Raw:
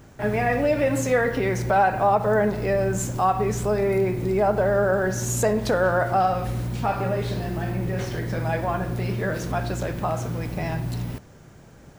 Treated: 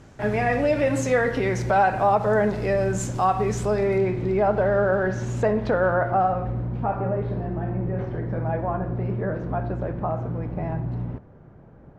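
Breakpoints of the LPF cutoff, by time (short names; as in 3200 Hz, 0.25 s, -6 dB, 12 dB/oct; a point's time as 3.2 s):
3.67 s 7900 Hz
4.26 s 3400 Hz
4.89 s 3400 Hz
5.98 s 1900 Hz
6.57 s 1100 Hz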